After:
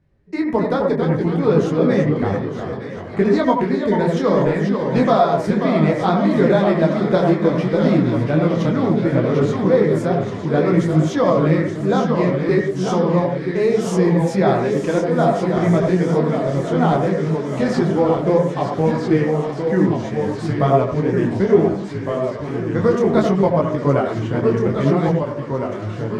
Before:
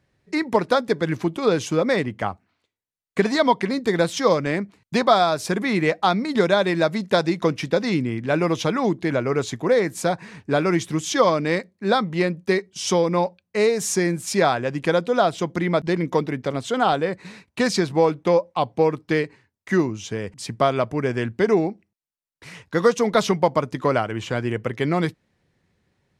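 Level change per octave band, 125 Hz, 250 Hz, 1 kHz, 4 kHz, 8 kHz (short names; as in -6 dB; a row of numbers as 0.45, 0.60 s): +9.0, +6.5, +1.5, -5.5, -8.5 dB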